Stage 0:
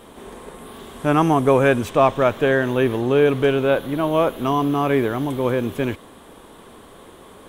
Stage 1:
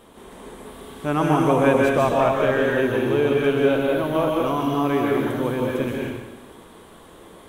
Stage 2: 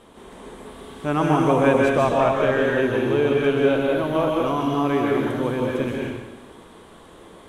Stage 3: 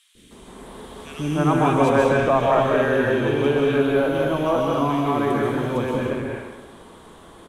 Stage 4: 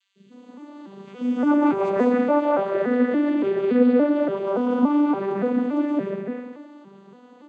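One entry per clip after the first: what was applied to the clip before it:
dense smooth reverb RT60 1.1 s, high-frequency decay 0.9×, pre-delay 115 ms, DRR −2 dB; level −5.5 dB
low-pass filter 9,400 Hz 12 dB per octave
three-band delay without the direct sound highs, lows, mids 150/310 ms, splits 380/2,300 Hz; level +2 dB
vocoder with an arpeggio as carrier major triad, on G3, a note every 285 ms

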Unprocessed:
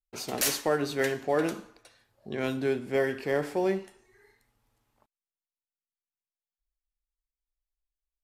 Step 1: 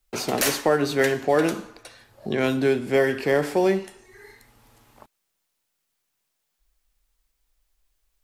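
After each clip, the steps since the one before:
multiband upward and downward compressor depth 40%
level +7 dB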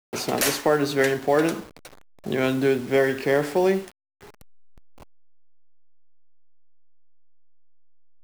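hold until the input has moved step −38.5 dBFS

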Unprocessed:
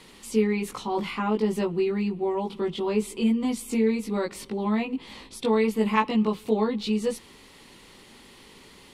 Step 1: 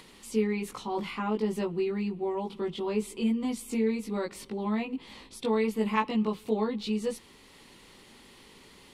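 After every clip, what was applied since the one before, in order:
upward compression, threshold −45 dBFS
level −4.5 dB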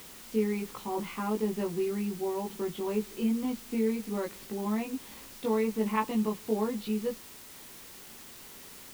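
Bessel low-pass filter 5,000 Hz, order 8
high-shelf EQ 3,000 Hz −8 dB
bit-depth reduction 8 bits, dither triangular
level −1 dB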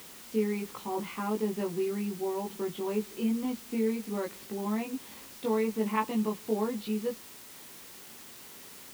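high-pass filter 100 Hz 6 dB per octave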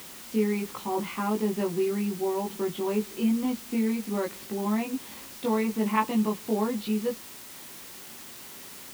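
notch filter 450 Hz, Q 12
level +4.5 dB

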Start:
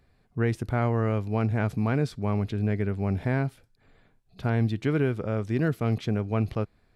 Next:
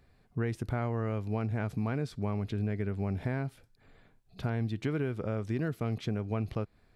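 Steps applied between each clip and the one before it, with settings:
downward compressor 3 to 1, threshold −30 dBFS, peak gain reduction 8 dB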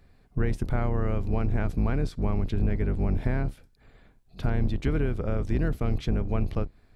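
sub-octave generator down 2 octaves, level +4 dB
level +3 dB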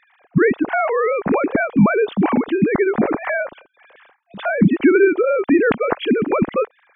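three sine waves on the formant tracks
level +8 dB

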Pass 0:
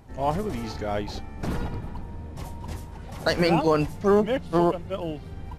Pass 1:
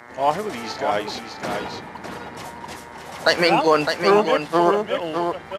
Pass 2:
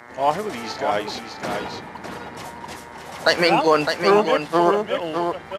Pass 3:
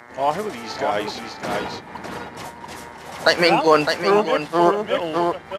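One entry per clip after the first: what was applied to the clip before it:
single-tap delay 608 ms −6 dB; hum with harmonics 120 Hz, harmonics 18, −50 dBFS −2 dB per octave; meter weighting curve A; level +7.5 dB
no processing that can be heard
amplitude modulation by smooth noise, depth 60%; level +3.5 dB

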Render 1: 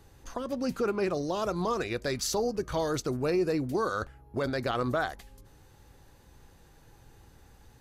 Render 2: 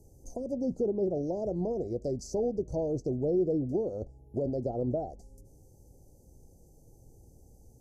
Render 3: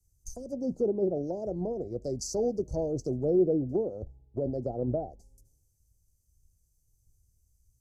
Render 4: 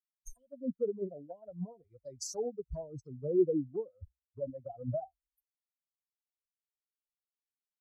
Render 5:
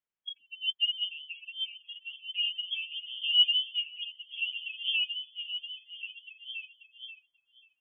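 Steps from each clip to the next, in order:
treble cut that deepens with the level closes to 2,200 Hz, closed at −25.5 dBFS; inverse Chebyshev band-stop filter 1,100–3,700 Hz, stop band 40 dB
multiband upward and downward expander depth 100%
spectral dynamics exaggerated over time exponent 3
voice inversion scrambler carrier 3,300 Hz; echo through a band-pass that steps 537 ms, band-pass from 940 Hz, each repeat 0.7 octaves, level −3 dB; level +3.5 dB

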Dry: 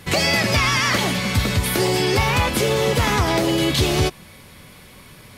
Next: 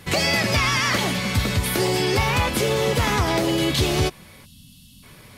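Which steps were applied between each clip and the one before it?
gain on a spectral selection 0:04.45–0:05.03, 290–2,600 Hz −25 dB
level −2 dB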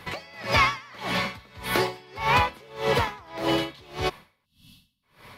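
octave-band graphic EQ 500/1,000/2,000/4,000/8,000 Hz +4/+10/+5/+5/−6 dB
tremolo with a sine in dB 1.7 Hz, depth 29 dB
level −4.5 dB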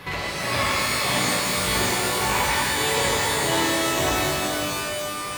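downward compressor, threshold −32 dBFS, peak gain reduction 15 dB
reverb with rising layers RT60 3.1 s, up +12 semitones, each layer −2 dB, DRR −7 dB
level +3.5 dB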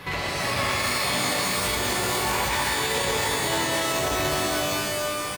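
brickwall limiter −16 dBFS, peak gain reduction 7 dB
single-tap delay 186 ms −6 dB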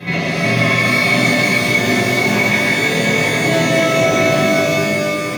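convolution reverb RT60 0.35 s, pre-delay 3 ms, DRR −11.5 dB
level −6.5 dB

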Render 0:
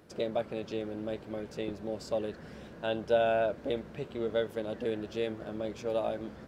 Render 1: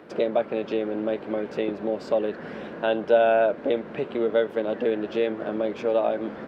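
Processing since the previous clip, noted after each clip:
three-way crossover with the lows and the highs turned down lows −19 dB, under 190 Hz, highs −19 dB, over 3,300 Hz
in parallel at +2.5 dB: downward compressor, threshold −39 dBFS, peak gain reduction 16.5 dB
on the sum: level +6 dB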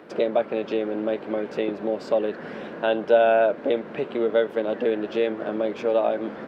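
low-shelf EQ 80 Hz −11.5 dB
level +1.5 dB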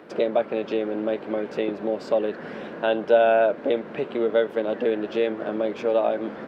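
no processing that can be heard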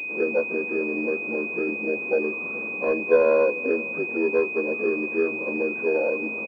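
partials spread apart or drawn together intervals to 80%
single-tap delay 433 ms −20.5 dB
switching amplifier with a slow clock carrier 2,500 Hz

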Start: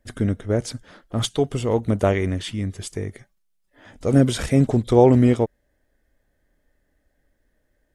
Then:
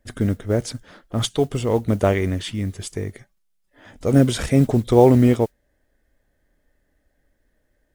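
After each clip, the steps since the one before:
noise that follows the level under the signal 32 dB
level +1 dB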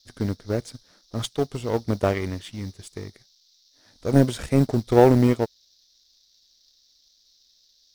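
noise in a band 3,600–5,900 Hz −45 dBFS
power curve on the samples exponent 1.4

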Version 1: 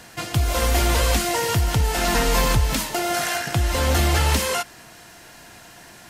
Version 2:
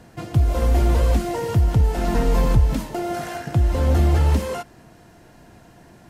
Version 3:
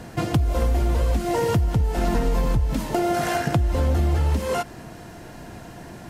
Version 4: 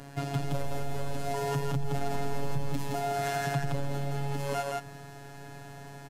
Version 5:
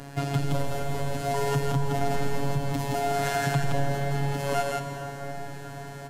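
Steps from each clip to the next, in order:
tilt shelving filter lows +9 dB, about 920 Hz; level −5 dB
downward compressor 6 to 1, threshold −27 dBFS, peak gain reduction 15.5 dB; level +8.5 dB
brickwall limiter −15.5 dBFS, peak gain reduction 5.5 dB; phases set to zero 140 Hz; on a send: loudspeakers that aren't time-aligned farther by 29 metres −11 dB, 58 metres −2 dB; on the sum: level −5 dB
convolution reverb RT60 4.9 s, pre-delay 123 ms, DRR 5.5 dB; level +4.5 dB

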